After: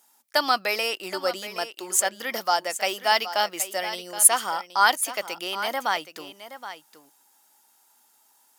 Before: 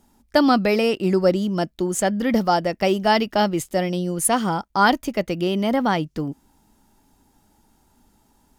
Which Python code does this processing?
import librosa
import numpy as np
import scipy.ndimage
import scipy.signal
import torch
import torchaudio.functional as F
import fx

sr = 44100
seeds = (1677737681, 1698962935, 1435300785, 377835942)

y = scipy.signal.sosfilt(scipy.signal.butter(2, 870.0, 'highpass', fs=sr, output='sos'), x)
y = fx.high_shelf(y, sr, hz=7400.0, db=10.0)
y = y + 10.0 ** (-12.5 / 20.0) * np.pad(y, (int(772 * sr / 1000.0), 0))[:len(y)]